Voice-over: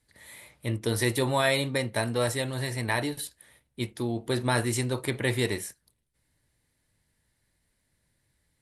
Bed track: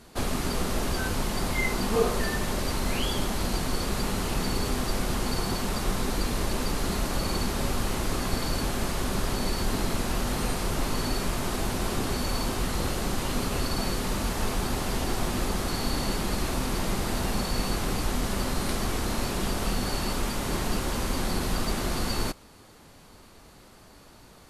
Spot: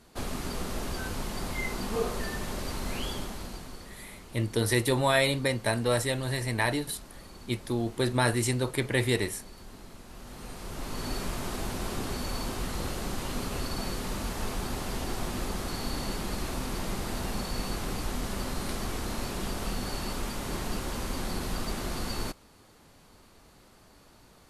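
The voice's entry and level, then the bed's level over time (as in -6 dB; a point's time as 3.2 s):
3.70 s, +0.5 dB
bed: 3.09 s -6 dB
4.04 s -20 dB
10.05 s -20 dB
11.12 s -5 dB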